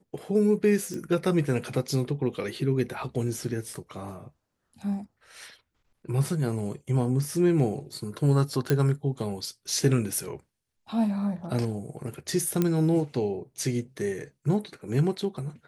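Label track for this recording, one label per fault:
0.940000	0.940000	click
8.700000	8.700000	click −10 dBFS
12.620000	12.620000	click −11 dBFS

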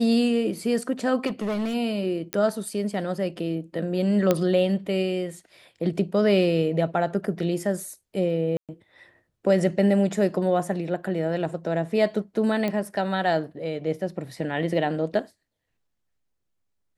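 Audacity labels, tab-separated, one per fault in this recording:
1.260000	1.750000	clipping −23.5 dBFS
2.330000	2.330000	click −10 dBFS
4.310000	4.310000	click −7 dBFS
8.570000	8.690000	drop-out 117 ms
12.680000	12.680000	click −15 dBFS

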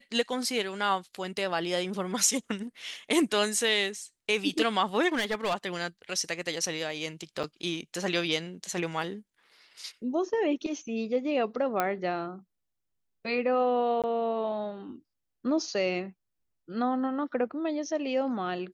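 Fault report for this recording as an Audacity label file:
5.120000	5.550000	clipping −24 dBFS
7.430000	7.440000	drop-out 6.9 ms
11.800000	11.800000	click −12 dBFS
14.020000	14.040000	drop-out 17 ms

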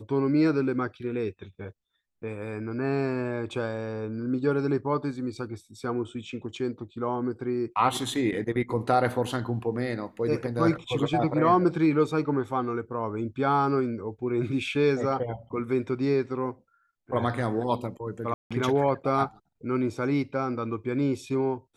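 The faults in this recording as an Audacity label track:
18.340000	18.510000	drop-out 166 ms

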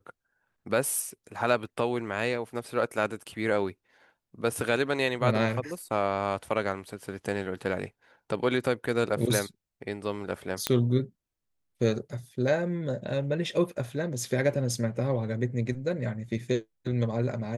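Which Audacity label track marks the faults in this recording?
10.670000	10.670000	click −8 dBFS

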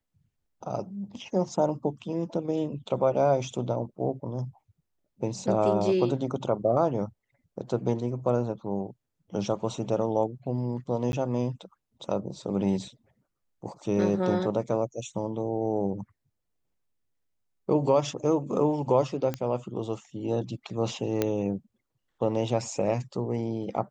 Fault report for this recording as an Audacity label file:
11.120000	11.130000	drop-out 11 ms
19.340000	19.340000	click −17 dBFS
21.220000	21.220000	click −11 dBFS

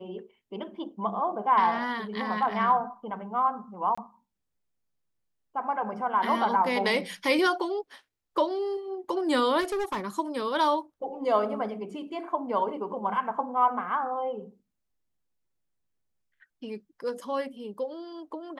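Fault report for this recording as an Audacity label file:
3.950000	3.980000	drop-out 25 ms
9.600000	10.010000	clipping −26.5 dBFS

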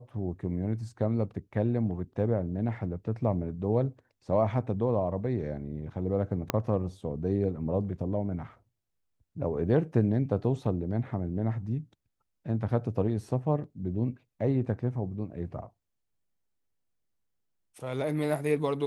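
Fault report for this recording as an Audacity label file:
6.500000	6.500000	click −11 dBFS

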